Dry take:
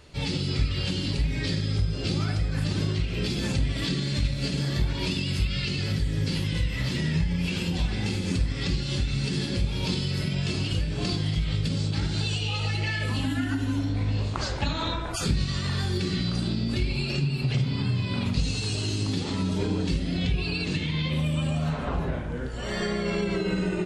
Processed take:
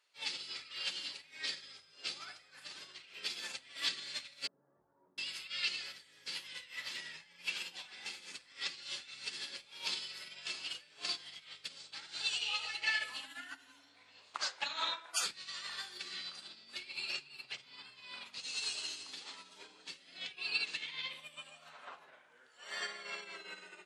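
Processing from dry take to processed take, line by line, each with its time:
4.47–5.18 Gaussian blur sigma 10 samples
whole clip: HPF 1100 Hz 12 dB/oct; upward expander 2.5:1, over -43 dBFS; gain +1 dB

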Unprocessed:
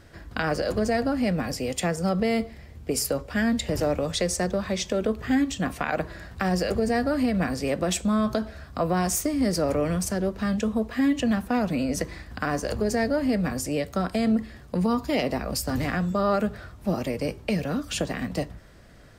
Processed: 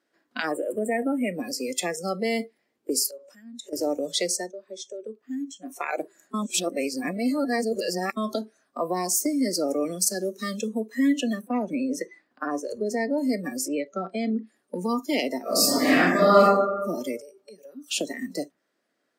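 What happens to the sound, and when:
0.52–1.34 spectral delete 3400–7200 Hz
3.07–3.73 compressor 12:1, threshold -34 dBFS
4.32–5.82 dip -10 dB, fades 0.20 s
6.34–8.17 reverse
9.99–10.6 high shelf 2200 Hz +6 dB
11.41–13.18 high shelf 4200 Hz -10 dB
13.68–14.47 air absorption 130 m
15.41–16.42 reverb throw, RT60 1.4 s, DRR -9 dB
17.21–17.88 compressor 4:1, threshold -37 dBFS
whole clip: spectral noise reduction 23 dB; Chebyshev high-pass 270 Hz, order 3; dynamic EQ 640 Hz, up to -4 dB, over -38 dBFS, Q 0.71; gain +3 dB

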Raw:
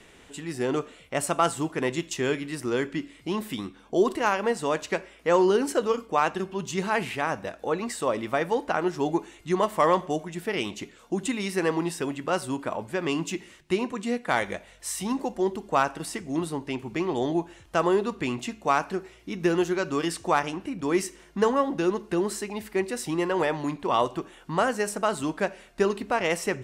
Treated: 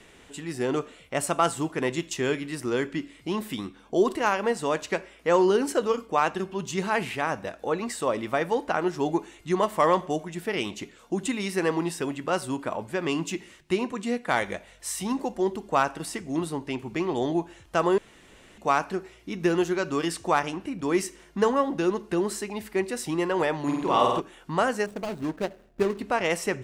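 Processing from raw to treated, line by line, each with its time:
17.98–18.58 room tone
23.62–24.2 flutter echo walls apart 8.4 m, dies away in 1 s
24.86–25.99 median filter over 41 samples

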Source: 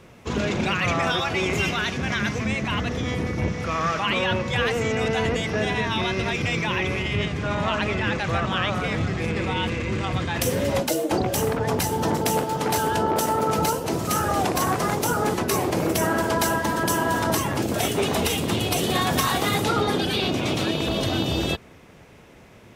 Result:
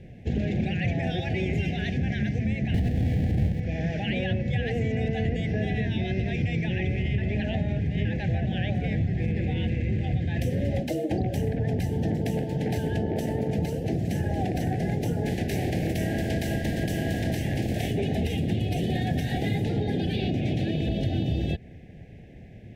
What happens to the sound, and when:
2.74–3.6 half-waves squared off
7.18–8.05 reverse
15.25–17.9 spectral contrast lowered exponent 0.64
whole clip: elliptic band-stop 770–1700 Hz, stop band 50 dB; tone controls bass +11 dB, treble -14 dB; compressor 3:1, threshold -21 dBFS; gain -3 dB

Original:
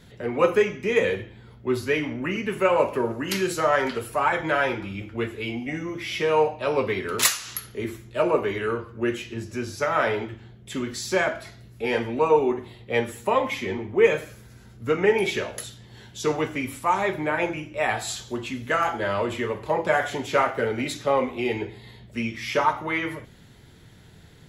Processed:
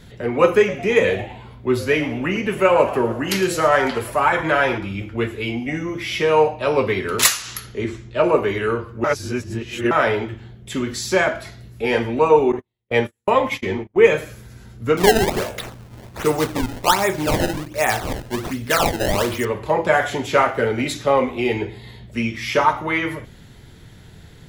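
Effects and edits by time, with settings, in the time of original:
0.52–4.78 frequency-shifting echo 0.11 s, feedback 46%, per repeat +140 Hz, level -16 dB
7.42–8.22 LPF 12000 Hz -> 5800 Hz 24 dB/oct
9.04–9.91 reverse
12.52–13.96 gate -32 dBFS, range -43 dB
14.97–19.45 decimation with a swept rate 22×, swing 160% 1.3 Hz
whole clip: low shelf 62 Hz +7.5 dB; gain +5 dB

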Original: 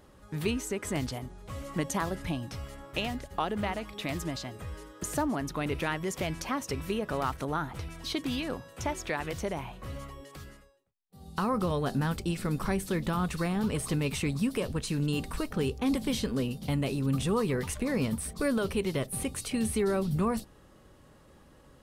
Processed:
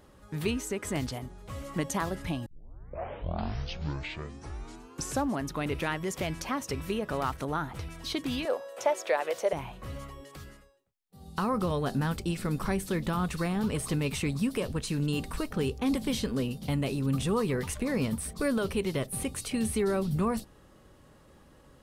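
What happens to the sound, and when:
2.46 tape start 2.97 s
8.45–9.53 resonant high-pass 550 Hz, resonance Q 3.5

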